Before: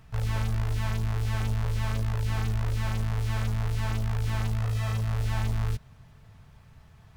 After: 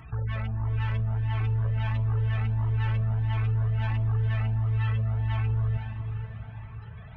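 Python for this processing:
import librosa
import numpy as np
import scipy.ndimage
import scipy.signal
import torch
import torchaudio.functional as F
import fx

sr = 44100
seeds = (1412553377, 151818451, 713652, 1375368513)

p1 = scipy.signal.sosfilt(scipy.signal.butter(2, 5200.0, 'lowpass', fs=sr, output='sos'), x)
p2 = fx.spec_gate(p1, sr, threshold_db=-30, keep='strong')
p3 = scipy.signal.sosfilt(scipy.signal.butter(2, 54.0, 'highpass', fs=sr, output='sos'), p2)
p4 = fx.high_shelf(p3, sr, hz=2100.0, db=7.5)
p5 = fx.over_compress(p4, sr, threshold_db=-34.0, ratio=-0.5)
p6 = p4 + (p5 * 10.0 ** (1.5 / 20.0))
p7 = 10.0 ** (-18.0 / 20.0) * np.tanh(p6 / 10.0 ** (-18.0 / 20.0))
p8 = p7 + fx.echo_diffused(p7, sr, ms=475, feedback_pct=46, wet_db=-8, dry=0)
y = fx.comb_cascade(p8, sr, direction='rising', hz=1.5)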